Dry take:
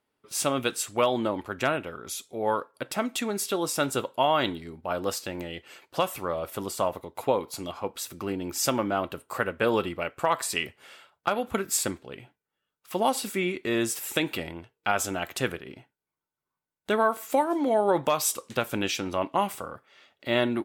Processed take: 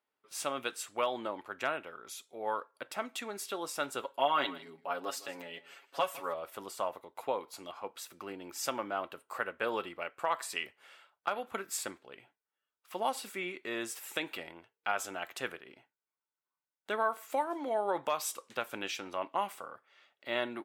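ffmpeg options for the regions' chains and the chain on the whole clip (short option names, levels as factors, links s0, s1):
-filter_complex "[0:a]asettb=1/sr,asplit=3[s0][s1][s2];[s0]atrim=end=4.024[s3];[s1]atrim=start=4.02:end=6.34,asetpts=PTS-STARTPTS,afade=t=in:d=0.004:c=qsin,afade=t=out:st=2.316:d=0.004:c=qsin,highpass=150,aecho=1:1:7.2:0.84,atrim=end_sample=102312,aecho=1:1:158:0.119,atrim=end_sample=102312[s4];[s2]atrim=start=6.336[s5];[s3][s4]acrossfade=d=0.004:c1=hsin:c2=qsin[s6];[s6][s5]acrossfade=d=0.004:c1=qsin:c2=hsin,highpass=f=1400:p=1,highshelf=f=2400:g=-11.5"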